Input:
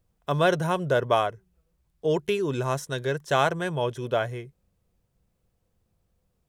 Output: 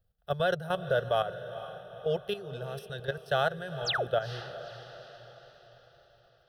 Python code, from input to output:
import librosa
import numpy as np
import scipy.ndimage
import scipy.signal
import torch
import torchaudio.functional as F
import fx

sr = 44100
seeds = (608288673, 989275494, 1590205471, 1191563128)

p1 = fx.level_steps(x, sr, step_db=12)
p2 = fx.spec_paint(p1, sr, seeds[0], shape='fall', start_s=3.85, length_s=0.21, low_hz=260.0, high_hz=8100.0, level_db=-27.0)
p3 = fx.fixed_phaser(p2, sr, hz=1500.0, stages=8)
y = p3 + fx.echo_diffused(p3, sr, ms=462, feedback_pct=50, wet_db=-12.5, dry=0)